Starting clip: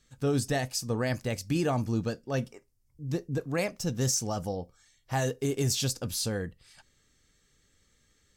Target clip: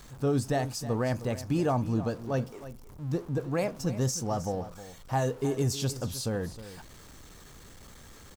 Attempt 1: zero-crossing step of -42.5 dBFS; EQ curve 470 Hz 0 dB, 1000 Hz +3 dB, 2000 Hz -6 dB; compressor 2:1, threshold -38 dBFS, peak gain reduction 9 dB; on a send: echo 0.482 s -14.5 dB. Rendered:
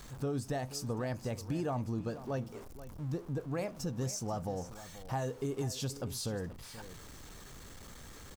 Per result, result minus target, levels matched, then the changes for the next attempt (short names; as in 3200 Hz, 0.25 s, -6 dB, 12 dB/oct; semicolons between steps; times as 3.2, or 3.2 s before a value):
echo 0.17 s late; compressor: peak gain reduction +9 dB
change: echo 0.312 s -14.5 dB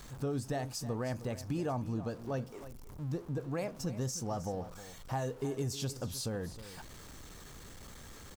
compressor: peak gain reduction +9 dB
remove: compressor 2:1, threshold -38 dBFS, peak gain reduction 9 dB